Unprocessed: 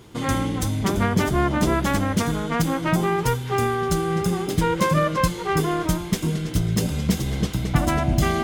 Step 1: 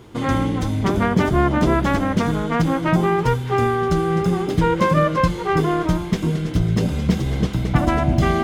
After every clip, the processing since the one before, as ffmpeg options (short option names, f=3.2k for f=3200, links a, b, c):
-filter_complex "[0:a]highshelf=f=3k:g=-8,acrossover=split=6000[a][b];[b]acompressor=threshold=-49dB:ratio=4:attack=1:release=60[c];[a][c]amix=inputs=2:normalize=0,bandreject=f=50:t=h:w=6,bandreject=f=100:t=h:w=6,bandreject=f=150:t=h:w=6,bandreject=f=200:t=h:w=6,volume=4dB"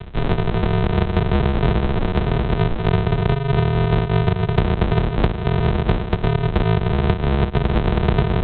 -filter_complex "[0:a]lowshelf=f=66:g=10.5,aresample=8000,acrusher=samples=29:mix=1:aa=0.000001,aresample=44100,acrossover=split=150|1200[a][b][c];[a]acompressor=threshold=-28dB:ratio=4[d];[b]acompressor=threshold=-27dB:ratio=4[e];[c]acompressor=threshold=-40dB:ratio=4[f];[d][e][f]amix=inputs=3:normalize=0,volume=8dB"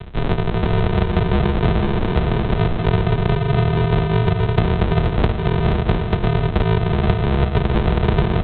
-af "aecho=1:1:477:0.473"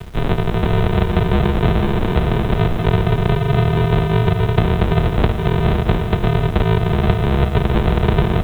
-af "acrusher=bits=7:mix=0:aa=0.000001,volume=1.5dB"